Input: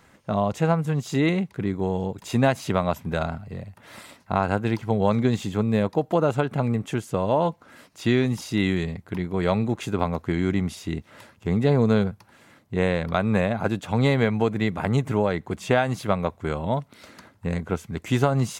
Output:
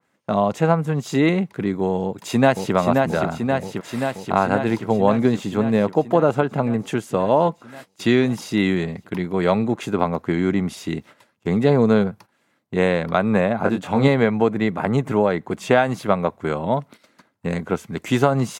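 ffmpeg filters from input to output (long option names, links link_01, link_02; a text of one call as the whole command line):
ffmpeg -i in.wav -filter_complex "[0:a]asplit=2[link_01][link_02];[link_02]afade=type=in:start_time=2.03:duration=0.01,afade=type=out:start_time=2.74:duration=0.01,aecho=0:1:530|1060|1590|2120|2650|3180|3710|4240|4770|5300|5830|6360:0.707946|0.530959|0.39822|0.298665|0.223998|0.167999|0.125999|0.0944994|0.0708745|0.0531559|0.0398669|0.0299002[link_03];[link_01][link_03]amix=inputs=2:normalize=0,asettb=1/sr,asplit=3[link_04][link_05][link_06];[link_04]atrim=end=13.594[link_07];[link_05]atrim=start=13.59:end=14.08,asetpts=PTS-STARTPTS,afade=type=in:duration=0.004:curve=qsin,afade=type=out:start_time=0.486:duration=0.004:curve=qsin,asplit=2[link_08][link_09];[link_09]adelay=22,volume=-5dB[link_10];[link_08][link_10]amix=inputs=2:normalize=0,atrim=end_sample=21609[link_11];[link_06]atrim=start=14.076[link_12];[link_07][link_11]acrossfade=duration=0.004:curve1=hsin:curve2=qsin[link_13];[link_13][link_12]acrossfade=duration=0.004:curve1=qsin:curve2=hsin,agate=range=-17dB:threshold=-43dB:ratio=16:detection=peak,highpass=160,adynamicequalizer=threshold=0.00794:dfrequency=2200:dqfactor=0.7:tfrequency=2200:tqfactor=0.7:attack=5:release=100:ratio=0.375:range=4:mode=cutabove:tftype=highshelf,volume=5dB" out.wav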